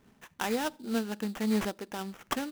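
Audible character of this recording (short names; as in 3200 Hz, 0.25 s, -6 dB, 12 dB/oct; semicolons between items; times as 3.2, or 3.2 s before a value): aliases and images of a low sample rate 4400 Hz, jitter 20%; noise-modulated level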